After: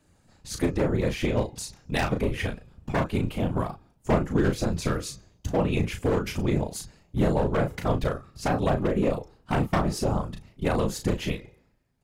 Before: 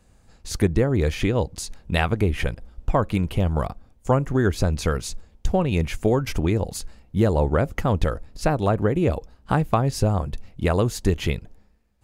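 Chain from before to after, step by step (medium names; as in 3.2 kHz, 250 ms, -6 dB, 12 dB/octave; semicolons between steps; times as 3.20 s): one-sided wavefolder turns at -17.5 dBFS; high-pass 47 Hz 6 dB/octave; de-hum 413.7 Hz, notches 18; whisper effect; doubling 35 ms -6 dB; trim -4 dB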